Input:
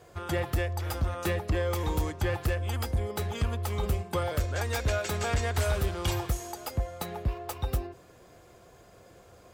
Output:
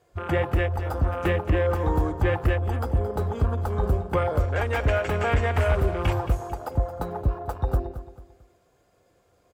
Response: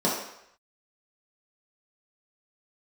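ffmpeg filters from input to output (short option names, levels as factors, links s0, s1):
-filter_complex "[0:a]asplit=2[s0][s1];[1:a]atrim=start_sample=2205,asetrate=57330,aresample=44100[s2];[s1][s2]afir=irnorm=-1:irlink=0,volume=0.0355[s3];[s0][s3]amix=inputs=2:normalize=0,afwtdn=0.0141,asplit=2[s4][s5];[s5]aecho=0:1:222|444|666:0.224|0.0761|0.0259[s6];[s4][s6]amix=inputs=2:normalize=0,volume=2"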